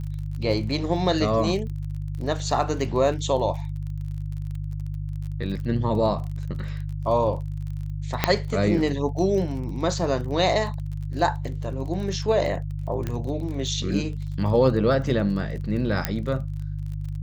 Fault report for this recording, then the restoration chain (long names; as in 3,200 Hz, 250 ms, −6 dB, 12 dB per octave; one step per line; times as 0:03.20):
surface crackle 31 per second −33 dBFS
mains hum 50 Hz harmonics 3 −30 dBFS
0:08.24: click −3 dBFS
0:13.07: click −15 dBFS
0:16.05: click −6 dBFS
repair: click removal
hum removal 50 Hz, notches 3